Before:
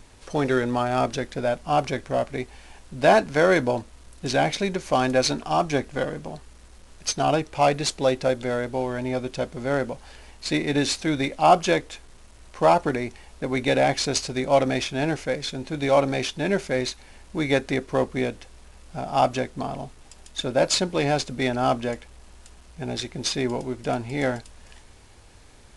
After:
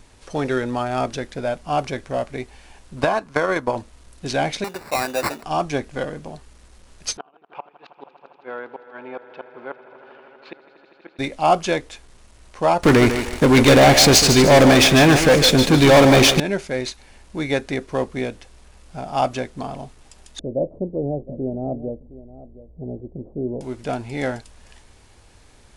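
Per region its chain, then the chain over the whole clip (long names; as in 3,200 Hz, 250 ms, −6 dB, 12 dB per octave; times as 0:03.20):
0:02.96–0:03.76: parametric band 1,100 Hz +10.5 dB 0.57 octaves + transient designer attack +11 dB, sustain −10 dB + downward compressor 10 to 1, threshold −14 dBFS
0:04.64–0:05.43: meter weighting curve A + sample-rate reduction 3,200 Hz
0:07.17–0:11.19: gate with flip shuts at −15 dBFS, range −32 dB + loudspeaker in its box 490–2,500 Hz, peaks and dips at 620 Hz −9 dB, 1,100 Hz +3 dB, 2,000 Hz −9 dB + echo that builds up and dies away 80 ms, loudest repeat 5, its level −18 dB
0:12.83–0:16.40: leveller curve on the samples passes 5 + feedback echo with a high-pass in the loop 150 ms, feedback 39%, high-pass 210 Hz, level −8 dB
0:20.39–0:23.61: Butterworth low-pass 610 Hz + single-tap delay 714 ms −16.5 dB
whole clip: no processing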